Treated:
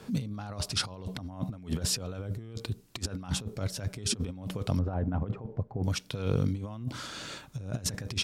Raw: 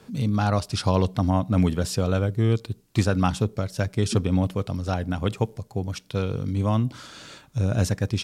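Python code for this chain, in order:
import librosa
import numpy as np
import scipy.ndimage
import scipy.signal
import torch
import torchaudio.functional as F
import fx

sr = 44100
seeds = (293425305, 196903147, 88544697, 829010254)

y = fx.lowpass(x, sr, hz=1100.0, slope=12, at=(4.79, 5.84))
y = fx.over_compress(y, sr, threshold_db=-28.0, ratio=-0.5)
y = y * librosa.db_to_amplitude(-3.5)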